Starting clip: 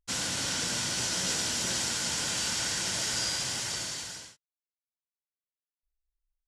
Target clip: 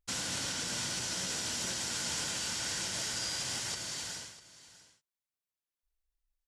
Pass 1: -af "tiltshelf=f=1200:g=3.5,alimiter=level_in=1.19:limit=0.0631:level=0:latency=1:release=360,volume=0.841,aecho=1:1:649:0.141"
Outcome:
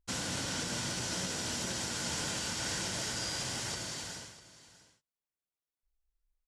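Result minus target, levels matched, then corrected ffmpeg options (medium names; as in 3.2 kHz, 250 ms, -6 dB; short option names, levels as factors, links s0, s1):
1 kHz band +3.0 dB
-af "alimiter=level_in=1.19:limit=0.0631:level=0:latency=1:release=360,volume=0.841,aecho=1:1:649:0.141"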